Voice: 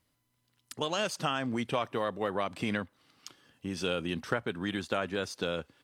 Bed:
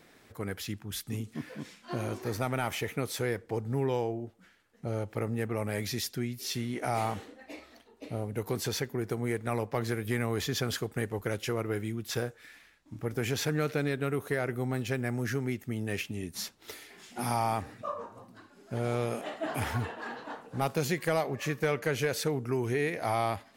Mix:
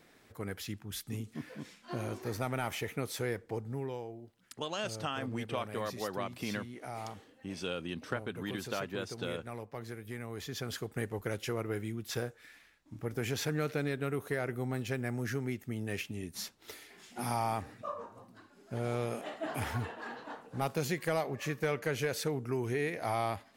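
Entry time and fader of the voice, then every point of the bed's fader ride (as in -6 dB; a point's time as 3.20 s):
3.80 s, -5.5 dB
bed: 3.49 s -3.5 dB
4.04 s -11.5 dB
10.27 s -11.5 dB
10.99 s -3.5 dB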